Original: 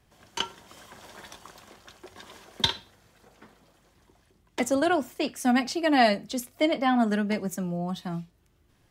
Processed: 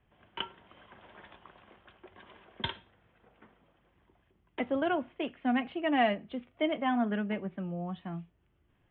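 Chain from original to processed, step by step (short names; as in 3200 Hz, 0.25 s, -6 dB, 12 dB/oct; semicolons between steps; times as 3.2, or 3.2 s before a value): steep low-pass 3300 Hz 72 dB/oct; gain -6 dB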